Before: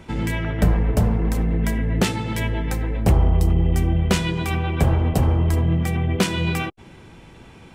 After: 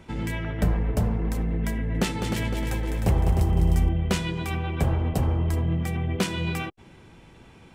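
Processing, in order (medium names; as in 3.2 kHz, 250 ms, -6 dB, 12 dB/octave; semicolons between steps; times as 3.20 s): 1.74–3.89 s: multi-head delay 102 ms, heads second and third, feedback 47%, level -7 dB; trim -5.5 dB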